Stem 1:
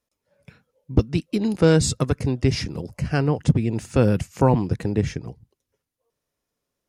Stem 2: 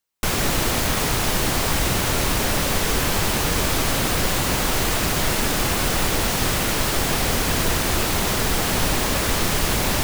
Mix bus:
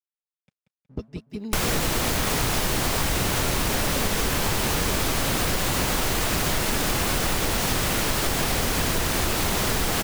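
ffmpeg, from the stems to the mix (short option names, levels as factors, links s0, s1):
-filter_complex "[0:a]aecho=1:1:4.7:0.45,aeval=exprs='sgn(val(0))*max(abs(val(0))-0.00631,0)':c=same,volume=0.2,asplit=2[s0][s1];[s1]volume=0.422[s2];[1:a]adelay=1300,volume=1.33[s3];[s2]aecho=0:1:184|368|552|736|920|1104|1288|1472|1656:1|0.57|0.325|0.185|0.106|0.0602|0.0343|0.0195|0.0111[s4];[s0][s3][s4]amix=inputs=3:normalize=0,acompressor=threshold=0.1:ratio=6"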